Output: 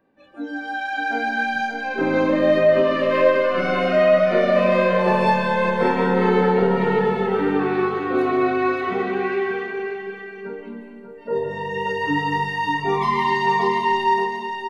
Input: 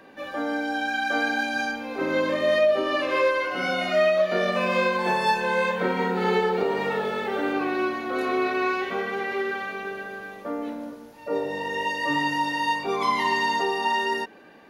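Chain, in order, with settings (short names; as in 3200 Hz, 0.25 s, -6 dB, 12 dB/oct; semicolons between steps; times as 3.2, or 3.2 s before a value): low shelf 270 Hz +9 dB; spectral noise reduction 20 dB; high shelf 3200 Hz -11.5 dB; on a send: feedback echo 0.584 s, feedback 16%, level -6.5 dB; on the sum: digital reverb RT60 0.92 s, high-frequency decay 0.95×, pre-delay 0.115 s, DRR 5.5 dB; gain +2.5 dB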